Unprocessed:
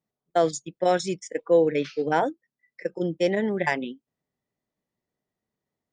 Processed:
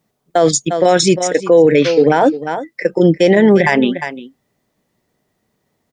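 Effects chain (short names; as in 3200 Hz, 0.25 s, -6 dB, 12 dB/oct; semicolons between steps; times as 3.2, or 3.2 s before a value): echo 0.35 s -17 dB; maximiser +19.5 dB; gain -1 dB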